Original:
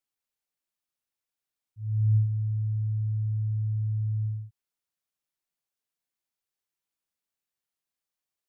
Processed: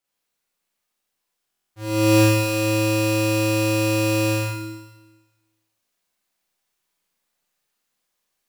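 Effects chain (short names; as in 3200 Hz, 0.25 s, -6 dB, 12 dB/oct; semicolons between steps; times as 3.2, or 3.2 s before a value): half-waves squared off; low shelf 97 Hz -5.5 dB; in parallel at -3 dB: vocal rider; on the sum: Schroeder reverb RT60 1.2 s, combs from 31 ms, DRR -6.5 dB; stuck buffer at 1.5, samples 1024, times 8; gain -1.5 dB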